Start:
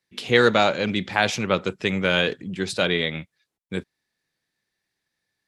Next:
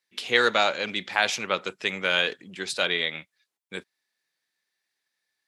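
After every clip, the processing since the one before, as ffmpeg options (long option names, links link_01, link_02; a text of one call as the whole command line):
ffmpeg -i in.wav -af "highpass=frequency=910:poles=1" out.wav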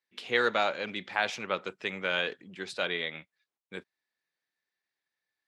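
ffmpeg -i in.wav -af "highshelf=frequency=4200:gain=-12,volume=-4dB" out.wav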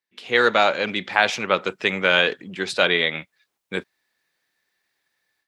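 ffmpeg -i in.wav -af "dynaudnorm=framelen=200:gausssize=3:maxgain=14dB" out.wav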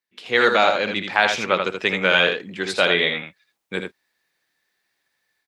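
ffmpeg -i in.wav -af "aecho=1:1:59|80:0.158|0.501" out.wav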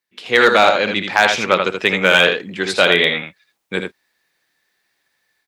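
ffmpeg -i in.wav -af "asoftclip=type=hard:threshold=-7dB,volume=5dB" out.wav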